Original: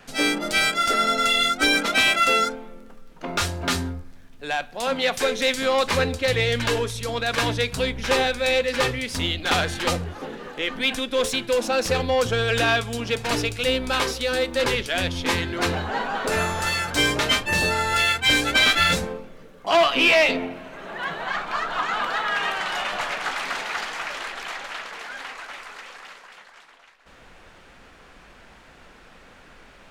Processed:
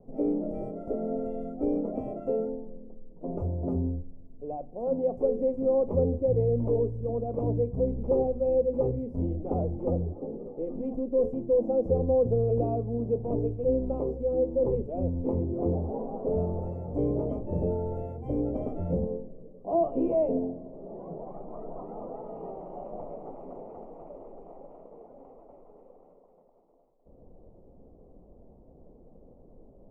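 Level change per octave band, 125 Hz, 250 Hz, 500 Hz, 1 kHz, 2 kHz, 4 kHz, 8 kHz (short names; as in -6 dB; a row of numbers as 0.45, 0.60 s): -0.5 dB, -1.0 dB, -2.0 dB, -15.5 dB, under -40 dB, under -40 dB, under -40 dB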